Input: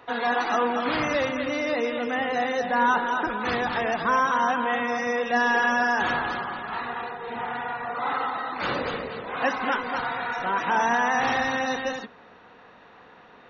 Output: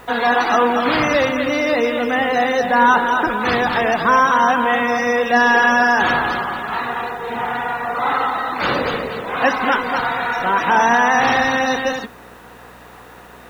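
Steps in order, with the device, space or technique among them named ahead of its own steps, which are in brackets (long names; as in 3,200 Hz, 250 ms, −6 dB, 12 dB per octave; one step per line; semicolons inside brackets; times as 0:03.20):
video cassette with head-switching buzz (hum with harmonics 60 Hz, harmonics 33, −56 dBFS −3 dB per octave; white noise bed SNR 37 dB)
level +8.5 dB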